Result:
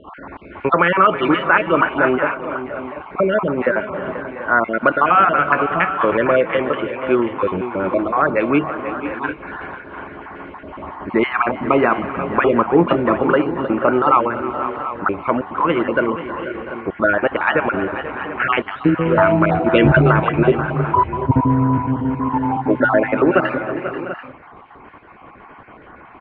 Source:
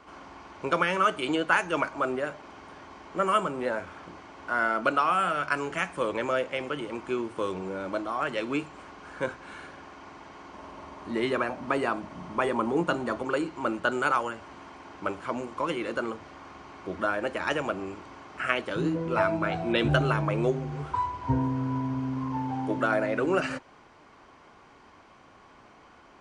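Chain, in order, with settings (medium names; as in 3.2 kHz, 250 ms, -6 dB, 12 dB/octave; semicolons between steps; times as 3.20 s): random holes in the spectrogram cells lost 35%; inverse Chebyshev low-pass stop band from 6.2 kHz, stop band 50 dB; on a send: multi-tap echo 315/485/509/693/736 ms -16.5/-13/-16.5/-17/-14 dB; on the sum: loudness maximiser +14.5 dB; trim -1 dB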